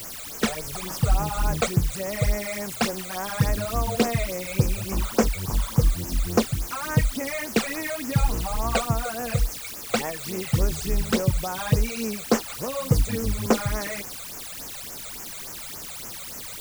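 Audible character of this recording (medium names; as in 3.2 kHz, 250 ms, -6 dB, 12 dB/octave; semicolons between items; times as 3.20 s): a quantiser's noise floor 6-bit, dither triangular; phasing stages 12, 3.5 Hz, lowest notch 280–3900 Hz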